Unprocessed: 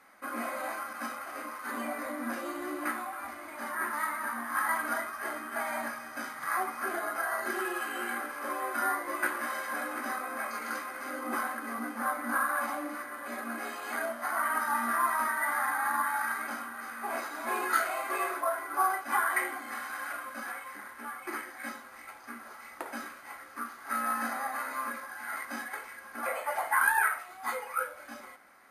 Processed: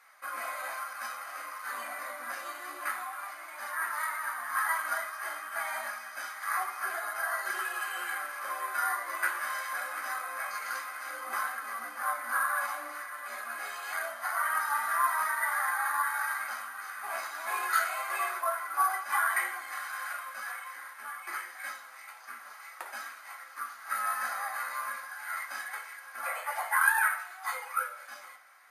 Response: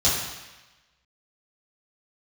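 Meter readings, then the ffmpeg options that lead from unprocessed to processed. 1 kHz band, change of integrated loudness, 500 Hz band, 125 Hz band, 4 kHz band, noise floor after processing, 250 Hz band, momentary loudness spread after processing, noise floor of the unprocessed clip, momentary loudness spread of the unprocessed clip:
-0.5 dB, 0.0 dB, -6.5 dB, n/a, +2.0 dB, -49 dBFS, under -20 dB, 12 LU, -49 dBFS, 12 LU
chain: -filter_complex "[0:a]highpass=1k,flanger=delay=4.2:depth=8.5:regen=-44:speed=0.26:shape=triangular,asplit=2[a][b];[1:a]atrim=start_sample=2205[c];[b][c]afir=irnorm=-1:irlink=0,volume=-25.5dB[d];[a][d]amix=inputs=2:normalize=0,volume=5dB"

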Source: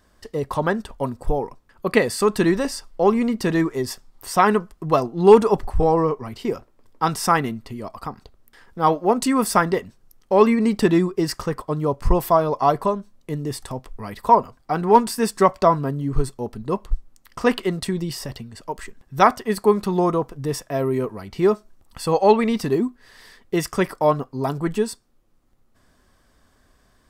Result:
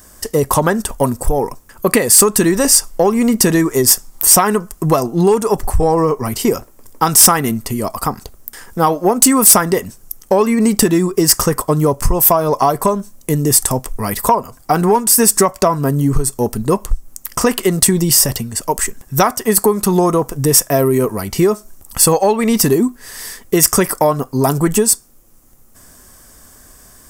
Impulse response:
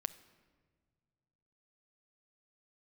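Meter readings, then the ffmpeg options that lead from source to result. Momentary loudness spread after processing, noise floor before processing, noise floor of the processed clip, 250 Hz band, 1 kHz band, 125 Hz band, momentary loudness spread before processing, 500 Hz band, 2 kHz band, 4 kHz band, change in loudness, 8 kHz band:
11 LU, -60 dBFS, -45 dBFS, +6.5 dB, +3.5 dB, +8.0 dB, 15 LU, +4.5 dB, +4.5 dB, +12.5 dB, +7.5 dB, +22.5 dB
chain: -af "acompressor=threshold=-21dB:ratio=12,aexciter=amount=5.4:drive=5.3:freq=5.7k,aeval=exprs='0.708*sin(PI/2*2.24*val(0)/0.708)':c=same,volume=1.5dB"

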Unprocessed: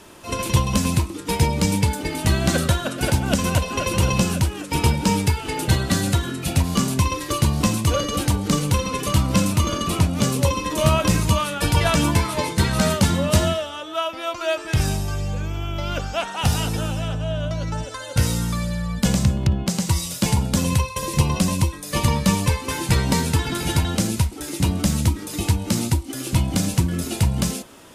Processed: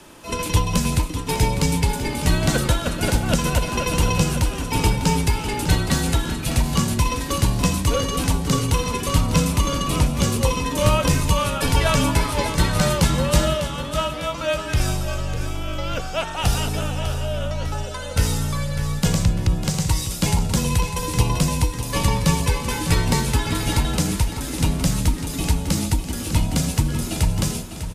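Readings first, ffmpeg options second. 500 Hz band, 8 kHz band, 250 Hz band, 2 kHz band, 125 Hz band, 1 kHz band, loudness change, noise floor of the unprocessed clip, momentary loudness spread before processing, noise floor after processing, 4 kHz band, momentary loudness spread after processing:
+0.5 dB, +0.5 dB, -1.5 dB, +0.5 dB, -0.5 dB, +0.5 dB, 0.0 dB, -34 dBFS, 6 LU, -30 dBFS, +0.5 dB, 6 LU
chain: -af "afreqshift=-28,aecho=1:1:600|1200|1800|2400|3000|3600:0.299|0.152|0.0776|0.0396|0.0202|0.0103"

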